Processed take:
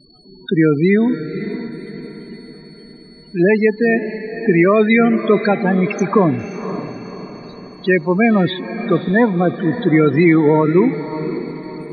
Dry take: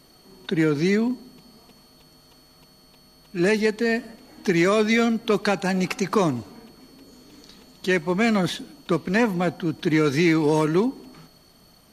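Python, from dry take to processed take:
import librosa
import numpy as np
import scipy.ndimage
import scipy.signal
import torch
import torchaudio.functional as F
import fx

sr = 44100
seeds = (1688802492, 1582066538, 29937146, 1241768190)

y = fx.spec_topn(x, sr, count=16)
y = fx.echo_diffused(y, sr, ms=548, feedback_pct=47, wet_db=-11)
y = y * librosa.db_to_amplitude(7.5)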